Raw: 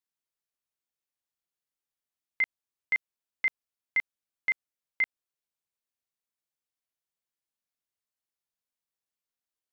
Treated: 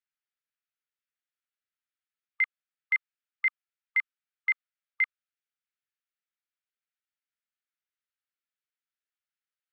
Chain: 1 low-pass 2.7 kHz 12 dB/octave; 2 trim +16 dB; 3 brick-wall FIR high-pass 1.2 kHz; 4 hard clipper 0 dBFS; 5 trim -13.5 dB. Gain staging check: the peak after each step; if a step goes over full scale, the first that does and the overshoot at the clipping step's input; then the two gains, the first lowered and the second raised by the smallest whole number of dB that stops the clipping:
-21.5 dBFS, -5.5 dBFS, -5.0 dBFS, -5.0 dBFS, -18.5 dBFS; nothing clips

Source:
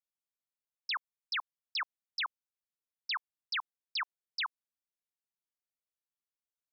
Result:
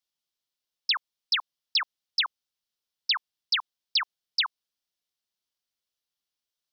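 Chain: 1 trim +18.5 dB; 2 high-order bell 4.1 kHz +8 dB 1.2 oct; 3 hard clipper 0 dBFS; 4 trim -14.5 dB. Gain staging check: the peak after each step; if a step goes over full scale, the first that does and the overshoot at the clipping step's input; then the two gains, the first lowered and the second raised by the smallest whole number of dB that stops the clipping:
-11.0 dBFS, -3.0 dBFS, -3.0 dBFS, -17.5 dBFS; nothing clips

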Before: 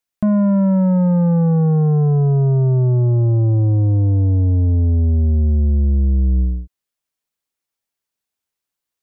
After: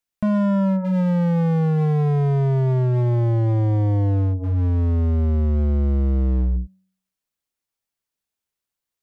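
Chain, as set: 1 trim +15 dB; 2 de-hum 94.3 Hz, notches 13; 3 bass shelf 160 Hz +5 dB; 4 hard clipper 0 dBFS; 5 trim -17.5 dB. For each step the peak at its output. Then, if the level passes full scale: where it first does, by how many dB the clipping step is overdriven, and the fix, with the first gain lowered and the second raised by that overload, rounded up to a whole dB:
+2.5 dBFS, +6.0 dBFS, +9.5 dBFS, 0.0 dBFS, -17.5 dBFS; step 1, 9.5 dB; step 1 +5 dB, step 5 -7.5 dB

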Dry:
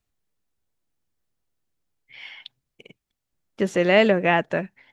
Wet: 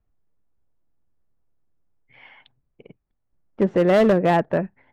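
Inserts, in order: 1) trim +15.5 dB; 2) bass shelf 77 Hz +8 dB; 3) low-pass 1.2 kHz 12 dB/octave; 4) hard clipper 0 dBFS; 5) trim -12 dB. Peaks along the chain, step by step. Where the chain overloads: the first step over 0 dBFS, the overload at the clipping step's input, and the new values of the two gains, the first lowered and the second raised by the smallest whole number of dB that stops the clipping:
+11.0 dBFS, +10.5 dBFS, +8.5 dBFS, 0.0 dBFS, -12.0 dBFS; step 1, 8.5 dB; step 1 +6.5 dB, step 5 -3 dB

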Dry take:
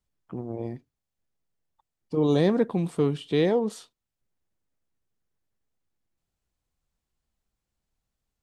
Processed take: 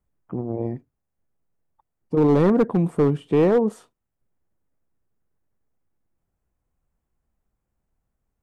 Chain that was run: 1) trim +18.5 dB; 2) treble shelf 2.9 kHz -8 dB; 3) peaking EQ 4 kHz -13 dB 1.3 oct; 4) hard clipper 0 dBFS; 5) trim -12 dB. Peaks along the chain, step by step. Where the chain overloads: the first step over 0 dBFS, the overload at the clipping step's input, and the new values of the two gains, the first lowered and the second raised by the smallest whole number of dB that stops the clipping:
+8.5 dBFS, +7.5 dBFS, +7.0 dBFS, 0.0 dBFS, -12.0 dBFS; step 1, 7.0 dB; step 1 +11.5 dB, step 5 -5 dB

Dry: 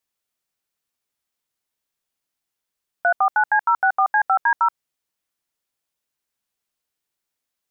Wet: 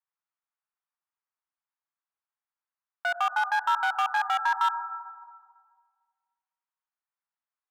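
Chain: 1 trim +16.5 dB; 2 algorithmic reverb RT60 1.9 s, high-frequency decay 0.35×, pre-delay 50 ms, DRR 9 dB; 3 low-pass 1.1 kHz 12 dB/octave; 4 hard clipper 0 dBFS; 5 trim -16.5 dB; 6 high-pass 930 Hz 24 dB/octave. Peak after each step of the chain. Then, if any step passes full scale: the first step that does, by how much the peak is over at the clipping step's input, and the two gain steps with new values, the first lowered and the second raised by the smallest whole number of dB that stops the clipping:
+6.5 dBFS, +9.0 dBFS, +6.5 dBFS, 0.0 dBFS, -16.5 dBFS, -15.5 dBFS; step 1, 6.5 dB; step 1 +9.5 dB, step 5 -9.5 dB

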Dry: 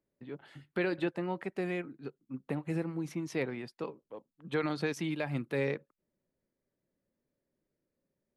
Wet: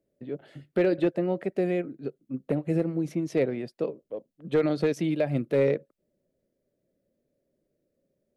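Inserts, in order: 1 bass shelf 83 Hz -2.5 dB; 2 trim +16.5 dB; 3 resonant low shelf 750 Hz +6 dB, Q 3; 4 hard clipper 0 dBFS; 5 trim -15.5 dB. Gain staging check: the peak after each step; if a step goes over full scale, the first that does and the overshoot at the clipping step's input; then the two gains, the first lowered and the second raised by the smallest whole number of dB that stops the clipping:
-19.5 dBFS, -3.0 dBFS, +4.0 dBFS, 0.0 dBFS, -15.5 dBFS; step 3, 4.0 dB; step 2 +12.5 dB, step 5 -11.5 dB

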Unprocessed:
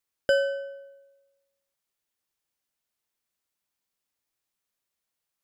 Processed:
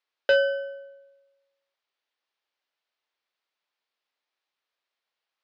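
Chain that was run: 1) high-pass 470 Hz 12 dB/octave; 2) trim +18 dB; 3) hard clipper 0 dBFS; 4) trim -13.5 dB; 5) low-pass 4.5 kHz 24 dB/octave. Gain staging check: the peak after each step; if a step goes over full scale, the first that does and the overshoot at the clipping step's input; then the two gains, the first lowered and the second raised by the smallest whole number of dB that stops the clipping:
-13.0 dBFS, +5.0 dBFS, 0.0 dBFS, -13.5 dBFS, -12.5 dBFS; step 2, 5.0 dB; step 2 +13 dB, step 4 -8.5 dB

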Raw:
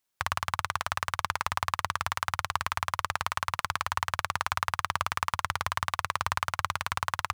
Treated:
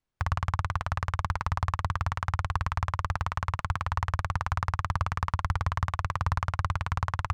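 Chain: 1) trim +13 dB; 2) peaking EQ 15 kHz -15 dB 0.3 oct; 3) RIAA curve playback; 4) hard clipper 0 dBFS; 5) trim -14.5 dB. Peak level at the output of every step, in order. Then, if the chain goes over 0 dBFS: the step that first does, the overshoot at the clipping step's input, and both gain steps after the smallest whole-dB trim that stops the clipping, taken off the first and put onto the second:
+5.5 dBFS, +5.5 dBFS, +4.0 dBFS, 0.0 dBFS, -14.5 dBFS; step 1, 4.0 dB; step 1 +9 dB, step 5 -10.5 dB

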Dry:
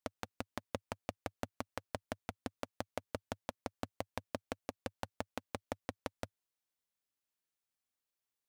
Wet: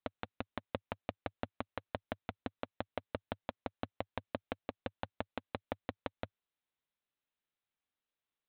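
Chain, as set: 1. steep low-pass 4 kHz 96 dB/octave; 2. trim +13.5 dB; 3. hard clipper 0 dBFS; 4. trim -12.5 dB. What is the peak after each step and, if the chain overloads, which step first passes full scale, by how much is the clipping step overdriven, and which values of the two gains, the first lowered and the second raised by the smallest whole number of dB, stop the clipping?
-17.5 dBFS, -4.0 dBFS, -4.0 dBFS, -16.5 dBFS; nothing clips

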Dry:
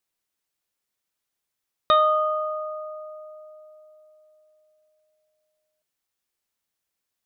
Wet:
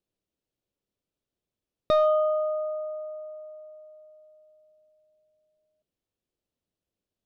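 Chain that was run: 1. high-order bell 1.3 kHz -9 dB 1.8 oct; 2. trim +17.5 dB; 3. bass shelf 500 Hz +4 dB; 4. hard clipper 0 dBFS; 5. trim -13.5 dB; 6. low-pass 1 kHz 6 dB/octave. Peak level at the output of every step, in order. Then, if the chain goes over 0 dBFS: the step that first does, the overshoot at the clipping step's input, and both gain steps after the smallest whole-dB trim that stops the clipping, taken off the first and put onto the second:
-12.5 dBFS, +5.0 dBFS, +6.5 dBFS, 0.0 dBFS, -13.5 dBFS, -14.5 dBFS; step 2, 6.5 dB; step 2 +10.5 dB, step 5 -6.5 dB

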